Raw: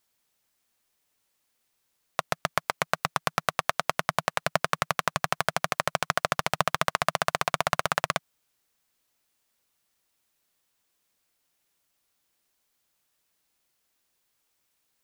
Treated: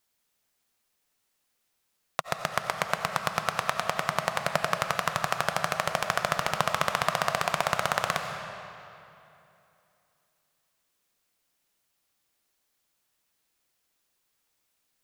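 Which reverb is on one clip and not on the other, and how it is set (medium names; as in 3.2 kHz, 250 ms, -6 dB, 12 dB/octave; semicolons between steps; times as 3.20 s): algorithmic reverb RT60 2.8 s, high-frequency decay 0.8×, pre-delay 50 ms, DRR 5 dB; trim -1.5 dB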